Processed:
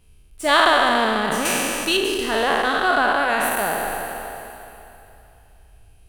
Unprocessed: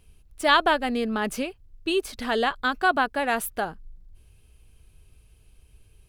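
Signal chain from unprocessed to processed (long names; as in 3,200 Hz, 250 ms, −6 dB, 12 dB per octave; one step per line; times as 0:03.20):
peak hold with a decay on every bin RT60 2.80 s
0:01.45–0:01.97: high-shelf EQ 2,300 Hz +11 dB
delay that swaps between a low-pass and a high-pass 233 ms, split 1,900 Hz, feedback 52%, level −9 dB
level −1 dB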